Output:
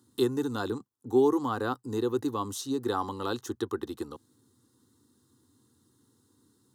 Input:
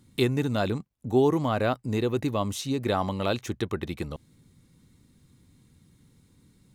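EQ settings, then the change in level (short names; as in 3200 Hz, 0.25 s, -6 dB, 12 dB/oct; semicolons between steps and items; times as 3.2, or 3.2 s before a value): HPF 110 Hz 24 dB/oct; fixed phaser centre 620 Hz, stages 6; 0.0 dB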